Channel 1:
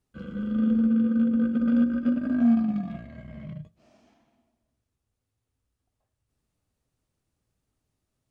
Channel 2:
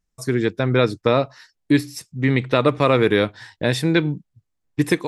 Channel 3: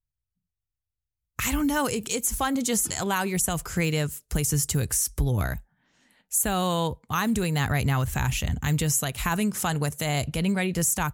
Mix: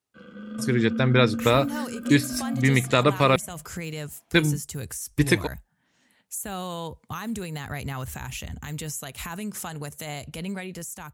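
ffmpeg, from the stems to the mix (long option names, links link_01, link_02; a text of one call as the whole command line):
ffmpeg -i stem1.wav -i stem2.wav -i stem3.wav -filter_complex "[0:a]highpass=frequency=620:poles=1,volume=-0.5dB[link_01];[1:a]equalizer=frequency=420:width=0.45:gain=-6,adelay=400,volume=-1dB,asplit=3[link_02][link_03][link_04];[link_02]atrim=end=3.36,asetpts=PTS-STARTPTS,afade=type=out:start_time=3.356:duration=0.004:curve=hsin[link_05];[link_03]atrim=start=3.36:end=4.34,asetpts=PTS-STARTPTS,volume=0[link_06];[link_04]atrim=start=4.34,asetpts=PTS-STARTPTS,afade=type=in:duration=0.004:curve=hsin[link_07];[link_05][link_06][link_07]concat=n=3:v=0:a=1[link_08];[2:a]highpass=frequency=56:width=0.5412,highpass=frequency=56:width=1.3066,adynamicequalizer=threshold=0.0126:dfrequency=120:dqfactor=1:tfrequency=120:tqfactor=1:attack=5:release=100:ratio=0.375:range=2.5:mode=cutabove:tftype=bell,alimiter=limit=-22.5dB:level=0:latency=1:release=210,volume=-5dB,asplit=2[link_09][link_10];[link_10]apad=whole_len=366410[link_11];[link_01][link_11]sidechaincompress=threshold=-37dB:ratio=8:attack=5.4:release=200[link_12];[link_12][link_08][link_09]amix=inputs=3:normalize=0,dynaudnorm=framelen=140:gausssize=9:maxgain=4dB" out.wav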